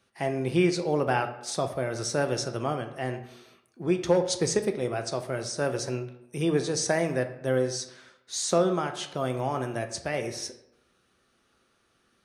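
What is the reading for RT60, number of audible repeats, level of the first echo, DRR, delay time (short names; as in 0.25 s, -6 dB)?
0.85 s, none, none, 7.0 dB, none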